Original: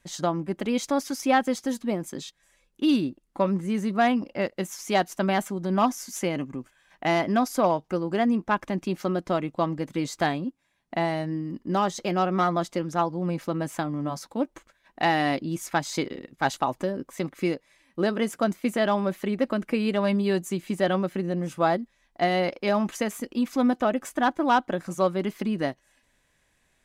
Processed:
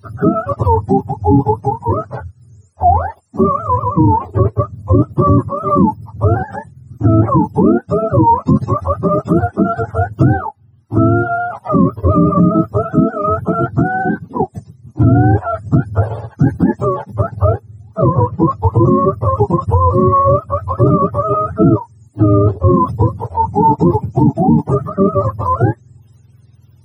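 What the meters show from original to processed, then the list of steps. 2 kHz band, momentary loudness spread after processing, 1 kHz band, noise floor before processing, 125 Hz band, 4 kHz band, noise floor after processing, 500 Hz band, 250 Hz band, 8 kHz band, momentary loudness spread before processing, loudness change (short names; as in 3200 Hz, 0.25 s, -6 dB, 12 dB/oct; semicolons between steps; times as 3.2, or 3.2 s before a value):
+1.5 dB, 8 LU, +12.0 dB, -69 dBFS, +21.0 dB, under -15 dB, -47 dBFS, +10.5 dB, +11.5 dB, under -10 dB, 8 LU, +12.5 dB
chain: spectrum mirrored in octaves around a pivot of 470 Hz; tone controls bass +8 dB, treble +2 dB; maximiser +14.5 dB; gain -1 dB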